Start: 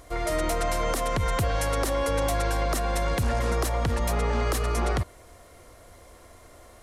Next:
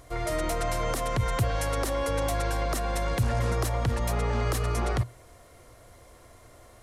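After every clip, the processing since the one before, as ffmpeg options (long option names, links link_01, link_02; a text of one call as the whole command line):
ffmpeg -i in.wav -af "equalizer=frequency=120:width=6.8:gain=10.5,volume=-2.5dB" out.wav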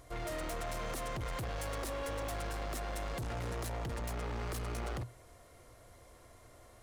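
ffmpeg -i in.wav -af "asoftclip=type=hard:threshold=-31dB,volume=-5.5dB" out.wav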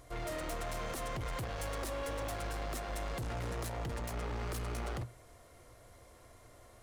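ffmpeg -i in.wav -af "flanger=delay=6.7:depth=9.9:regen=-82:speed=0.77:shape=sinusoidal,volume=4.5dB" out.wav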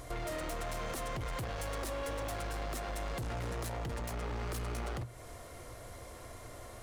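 ffmpeg -i in.wav -af "acompressor=threshold=-47dB:ratio=5,volume=9.5dB" out.wav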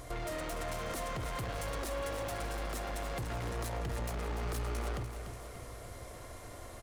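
ffmpeg -i in.wav -af "aecho=1:1:293|586|879|1172|1465|1758:0.355|0.192|0.103|0.0559|0.0302|0.0163" out.wav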